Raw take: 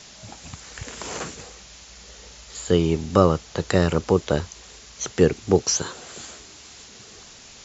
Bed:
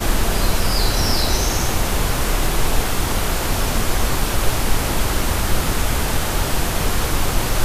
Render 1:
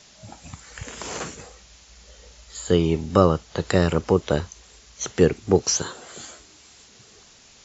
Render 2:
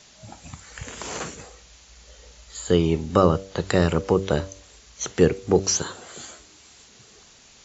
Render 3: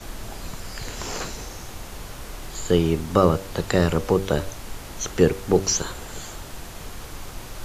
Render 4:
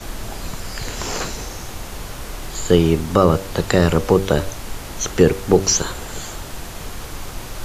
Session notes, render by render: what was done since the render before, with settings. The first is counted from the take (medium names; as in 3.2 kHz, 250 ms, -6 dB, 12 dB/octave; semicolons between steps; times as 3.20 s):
noise print and reduce 6 dB
band-stop 5.2 kHz, Q 25; de-hum 96.56 Hz, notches 7
add bed -17.5 dB
trim +5.5 dB; peak limiter -1 dBFS, peak gain reduction 3 dB